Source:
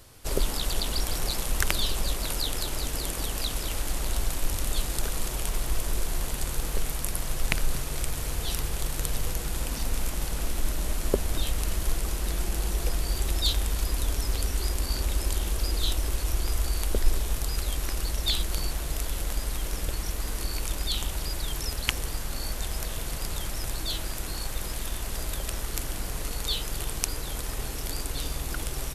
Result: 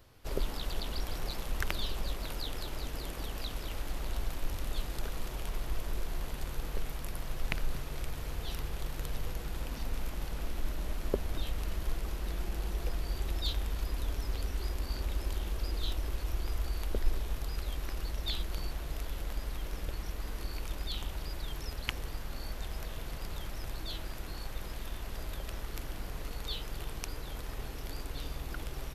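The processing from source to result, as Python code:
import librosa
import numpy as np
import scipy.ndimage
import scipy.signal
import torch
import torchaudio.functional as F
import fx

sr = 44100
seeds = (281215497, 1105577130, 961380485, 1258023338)

y = fx.peak_eq(x, sr, hz=8900.0, db=-12.5, octaves=1.3)
y = y * librosa.db_to_amplitude(-6.5)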